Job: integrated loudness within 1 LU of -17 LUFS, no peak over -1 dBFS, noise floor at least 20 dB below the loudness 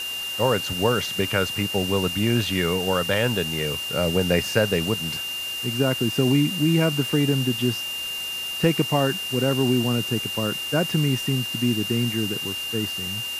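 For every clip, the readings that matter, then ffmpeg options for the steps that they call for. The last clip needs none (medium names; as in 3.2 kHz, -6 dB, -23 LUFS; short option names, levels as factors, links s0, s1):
steady tone 2.8 kHz; tone level -28 dBFS; noise floor -30 dBFS; noise floor target -43 dBFS; loudness -23.0 LUFS; peak level -5.5 dBFS; loudness target -17.0 LUFS
-> -af "bandreject=f=2800:w=30"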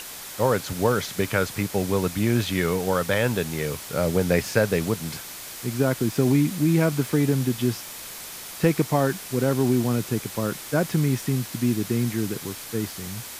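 steady tone not found; noise floor -38 dBFS; noise floor target -45 dBFS
-> -af "afftdn=nr=7:nf=-38"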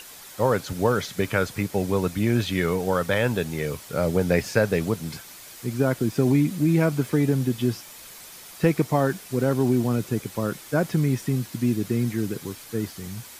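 noise floor -44 dBFS; noise floor target -45 dBFS
-> -af "afftdn=nr=6:nf=-44"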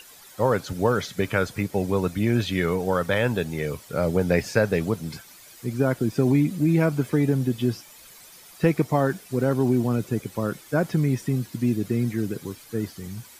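noise floor -48 dBFS; loudness -24.5 LUFS; peak level -6.5 dBFS; loudness target -17.0 LUFS
-> -af "volume=2.37,alimiter=limit=0.891:level=0:latency=1"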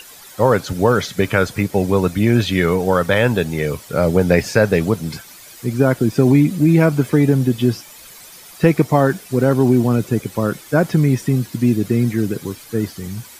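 loudness -17.0 LUFS; peak level -1.0 dBFS; noise floor -41 dBFS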